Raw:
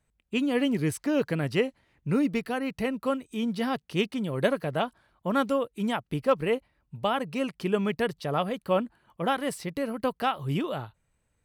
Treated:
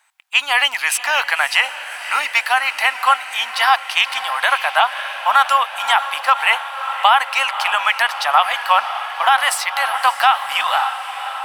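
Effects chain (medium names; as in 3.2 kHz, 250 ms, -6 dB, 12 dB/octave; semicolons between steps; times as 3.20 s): elliptic high-pass 800 Hz, stop band 50 dB; treble shelf 5 kHz -4 dB; echo that smears into a reverb 575 ms, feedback 66%, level -13.5 dB; loudness maximiser +23 dB; trim -1 dB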